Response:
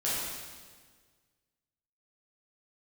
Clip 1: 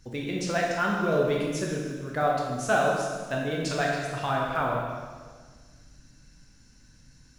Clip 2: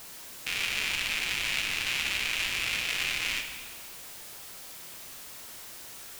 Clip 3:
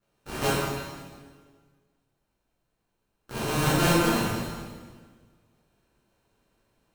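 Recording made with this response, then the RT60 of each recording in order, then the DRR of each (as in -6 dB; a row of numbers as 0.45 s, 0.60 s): 3; 1.6 s, 1.6 s, 1.6 s; -2.5 dB, 4.5 dB, -9.5 dB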